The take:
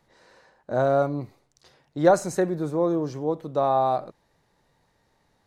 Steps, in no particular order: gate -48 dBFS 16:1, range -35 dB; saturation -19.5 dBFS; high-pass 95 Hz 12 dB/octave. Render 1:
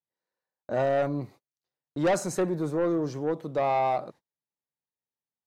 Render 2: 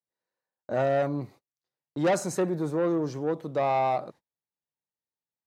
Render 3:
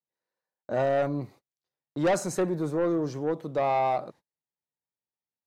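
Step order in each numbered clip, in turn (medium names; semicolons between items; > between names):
high-pass > saturation > gate; saturation > gate > high-pass; gate > high-pass > saturation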